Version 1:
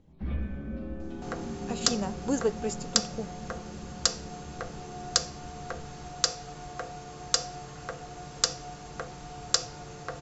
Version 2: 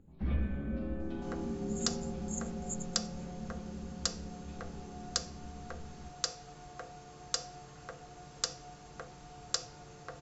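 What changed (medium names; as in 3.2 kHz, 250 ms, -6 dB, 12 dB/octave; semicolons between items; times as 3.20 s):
speech: add brick-wall FIR band-stop 170–6400 Hz; second sound -8.5 dB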